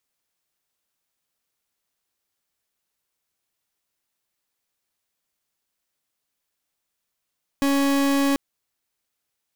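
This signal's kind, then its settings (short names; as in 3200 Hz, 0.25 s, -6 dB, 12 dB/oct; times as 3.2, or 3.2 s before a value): pulse 278 Hz, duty 39% -20 dBFS 0.74 s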